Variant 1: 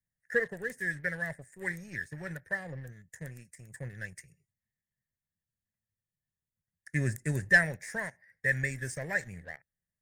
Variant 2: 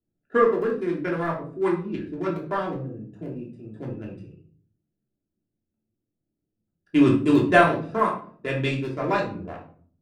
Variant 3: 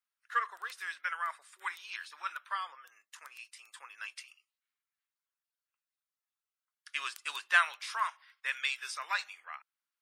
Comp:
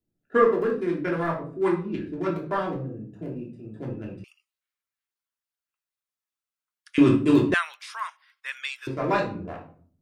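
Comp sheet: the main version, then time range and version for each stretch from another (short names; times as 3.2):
2
4.24–6.98 from 3
7.54–8.87 from 3
not used: 1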